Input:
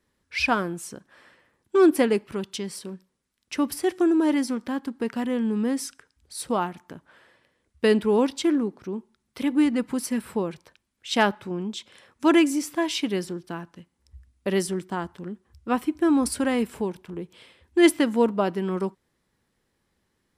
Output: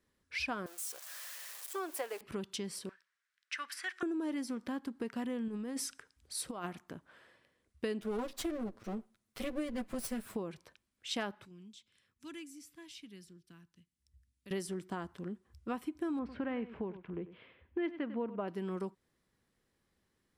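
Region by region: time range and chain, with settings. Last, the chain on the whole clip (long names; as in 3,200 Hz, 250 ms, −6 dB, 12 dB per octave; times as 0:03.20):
0:00.66–0:02.21: spike at every zero crossing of −24 dBFS + high-pass filter 640 Hz 24 dB per octave + tilt shelving filter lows +7 dB, about 810 Hz
0:02.89–0:04.03: high-pass with resonance 1,600 Hz, resonance Q 3.4 + high-frequency loss of the air 54 metres
0:05.48–0:06.79: low-shelf EQ 350 Hz −3 dB + compressor whose output falls as the input rises −29 dBFS, ratio −0.5
0:08.01–0:10.36: lower of the sound and its delayed copy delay 9.1 ms + high-shelf EQ 11,000 Hz +6.5 dB
0:11.45–0:14.51: guitar amp tone stack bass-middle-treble 6-0-2 + multiband upward and downward compressor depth 40%
0:16.19–0:18.48: low-pass filter 2,700 Hz 24 dB per octave + single-tap delay 96 ms −16 dB
whole clip: notch filter 880 Hz, Q 14; downward compressor 4 to 1, threshold −30 dBFS; level −5.5 dB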